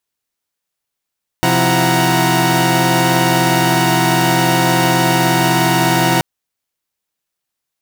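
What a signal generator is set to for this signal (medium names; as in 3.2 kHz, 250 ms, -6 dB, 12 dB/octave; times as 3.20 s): chord C3/F3/E4/F#5/A#5 saw, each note -15.5 dBFS 4.78 s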